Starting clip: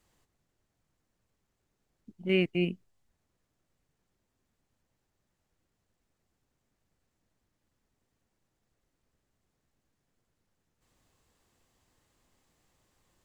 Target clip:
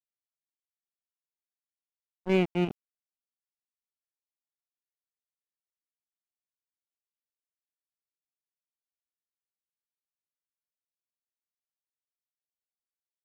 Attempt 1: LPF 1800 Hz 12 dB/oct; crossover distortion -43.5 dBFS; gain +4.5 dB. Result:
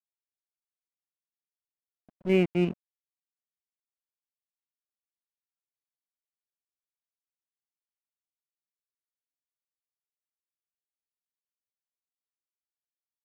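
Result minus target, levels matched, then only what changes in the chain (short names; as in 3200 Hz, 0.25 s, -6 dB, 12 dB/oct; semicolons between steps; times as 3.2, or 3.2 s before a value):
crossover distortion: distortion -8 dB
change: crossover distortion -34 dBFS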